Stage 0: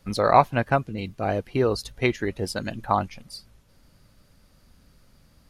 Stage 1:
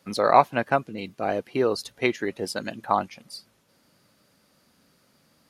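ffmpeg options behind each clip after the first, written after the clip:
-af "highpass=210"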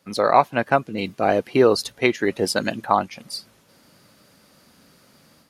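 -af "dynaudnorm=f=100:g=3:m=9.5dB,volume=-1dB"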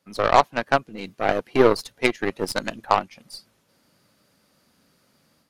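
-af "aeval=exprs='0.841*(cos(1*acos(clip(val(0)/0.841,-1,1)))-cos(1*PI/2))+0.0668*(cos(6*acos(clip(val(0)/0.841,-1,1)))-cos(6*PI/2))+0.075*(cos(7*acos(clip(val(0)/0.841,-1,1)))-cos(7*PI/2))':c=same"

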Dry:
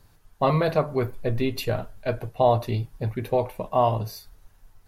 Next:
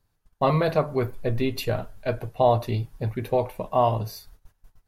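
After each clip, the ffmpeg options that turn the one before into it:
-af "agate=range=-15dB:threshold=-47dB:ratio=16:detection=peak"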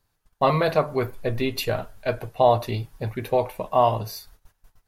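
-af "lowshelf=f=430:g=-6.5,volume=4dB"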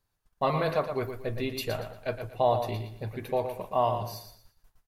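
-af "aecho=1:1:117|234|351|468:0.376|0.113|0.0338|0.0101,volume=-7dB"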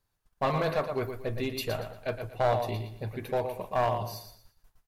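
-af "aeval=exprs='clip(val(0),-1,0.0631)':c=same"

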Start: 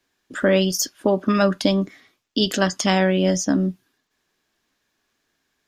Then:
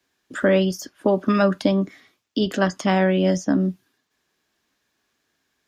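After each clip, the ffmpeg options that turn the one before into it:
-filter_complex "[0:a]highpass=41,acrossover=split=310|2300[a][b][c];[c]acompressor=threshold=-37dB:ratio=4[d];[a][b][d]amix=inputs=3:normalize=0"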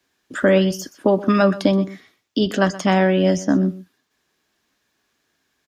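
-af "aecho=1:1:125:0.133,volume=2.5dB"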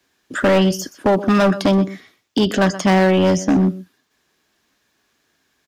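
-af "asoftclip=type=hard:threshold=-14.5dB,volume=4dB"

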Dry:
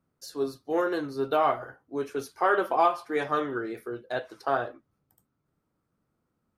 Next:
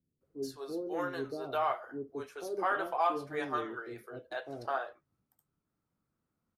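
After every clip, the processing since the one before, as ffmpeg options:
-filter_complex "[0:a]acrossover=split=470[a][b];[b]adelay=210[c];[a][c]amix=inputs=2:normalize=0,volume=-6dB"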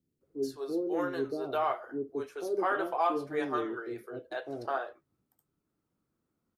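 -af "equalizer=f=350:w=1.3:g=6.5"

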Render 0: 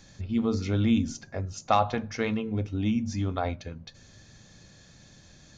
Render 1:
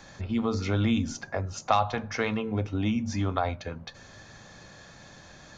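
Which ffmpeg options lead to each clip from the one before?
-filter_complex "[0:a]equalizer=f=1k:w=0.51:g=13,acrossover=split=150|3000[a][b][c];[b]acompressor=threshold=-31dB:ratio=2[d];[a][d][c]amix=inputs=3:normalize=0"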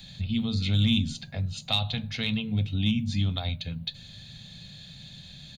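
-filter_complex "[0:a]firequalizer=gain_entry='entry(100,0);entry(150,6);entry(340,-17);entry(670,-14);entry(1100,-21);entry(2700,2);entry(3900,11);entry(5600,-12);entry(9800,10)':delay=0.05:min_phase=1,asplit=2[a][b];[b]volume=21dB,asoftclip=hard,volume=-21dB,volume=-6dB[c];[a][c]amix=inputs=2:normalize=0"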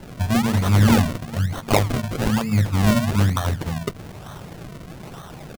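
-af "aecho=1:1:387|774|1161:0.075|0.0375|0.0187,acrusher=samples=36:mix=1:aa=0.000001:lfo=1:lforange=36:lforate=1.1,volume=8dB"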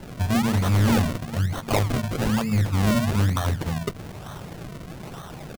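-af "asoftclip=type=tanh:threshold=-15dB"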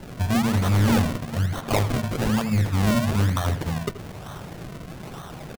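-filter_complex "[0:a]asplit=2[a][b];[b]adelay=80,highpass=300,lowpass=3.4k,asoftclip=type=hard:threshold=-23.5dB,volume=-8dB[c];[a][c]amix=inputs=2:normalize=0"

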